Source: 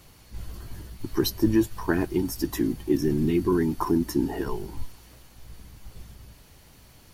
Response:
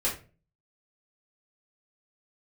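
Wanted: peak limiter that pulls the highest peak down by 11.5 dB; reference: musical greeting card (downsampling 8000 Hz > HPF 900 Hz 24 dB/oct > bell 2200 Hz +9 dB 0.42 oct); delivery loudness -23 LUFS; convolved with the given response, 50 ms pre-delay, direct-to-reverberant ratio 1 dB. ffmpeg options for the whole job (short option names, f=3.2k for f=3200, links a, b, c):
-filter_complex "[0:a]alimiter=limit=-21dB:level=0:latency=1,asplit=2[a][b];[1:a]atrim=start_sample=2205,adelay=50[c];[b][c]afir=irnorm=-1:irlink=0,volume=-9dB[d];[a][d]amix=inputs=2:normalize=0,aresample=8000,aresample=44100,highpass=f=900:w=0.5412,highpass=f=900:w=1.3066,equalizer=f=2.2k:t=o:w=0.42:g=9,volume=18.5dB"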